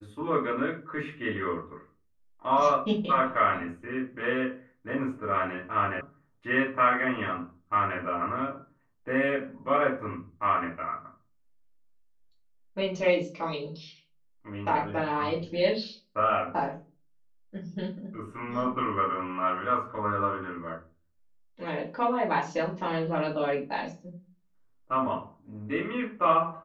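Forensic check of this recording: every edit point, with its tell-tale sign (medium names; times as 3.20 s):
6.01 s: sound stops dead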